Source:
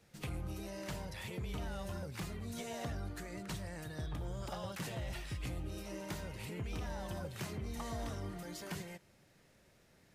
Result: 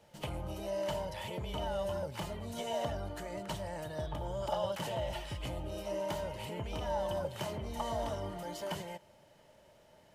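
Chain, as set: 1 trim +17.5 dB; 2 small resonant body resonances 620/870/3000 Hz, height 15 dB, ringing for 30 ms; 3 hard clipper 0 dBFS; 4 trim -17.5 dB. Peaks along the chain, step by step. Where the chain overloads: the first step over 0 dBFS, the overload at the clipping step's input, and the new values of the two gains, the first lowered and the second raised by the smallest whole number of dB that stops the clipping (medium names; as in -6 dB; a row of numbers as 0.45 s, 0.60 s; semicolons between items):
-15.5 dBFS, -3.5 dBFS, -3.5 dBFS, -21.0 dBFS; nothing clips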